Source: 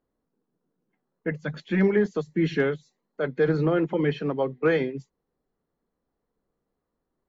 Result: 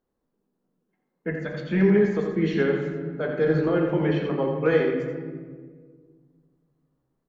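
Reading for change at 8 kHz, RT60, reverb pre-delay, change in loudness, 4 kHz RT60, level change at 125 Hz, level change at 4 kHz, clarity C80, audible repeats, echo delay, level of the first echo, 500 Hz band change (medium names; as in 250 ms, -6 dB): no reading, 1.7 s, 4 ms, +1.5 dB, 0.95 s, +2.0 dB, 0.0 dB, 4.0 dB, 1, 85 ms, -7.5 dB, +2.0 dB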